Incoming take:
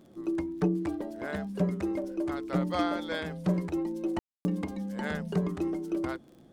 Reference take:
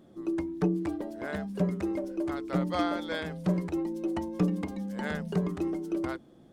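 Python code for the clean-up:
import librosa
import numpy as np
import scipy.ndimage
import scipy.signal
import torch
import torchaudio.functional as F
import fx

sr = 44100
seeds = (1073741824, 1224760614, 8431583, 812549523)

y = fx.fix_declick_ar(x, sr, threshold=6.5)
y = fx.fix_ambience(y, sr, seeds[0], print_start_s=6.01, print_end_s=6.51, start_s=4.19, end_s=4.45)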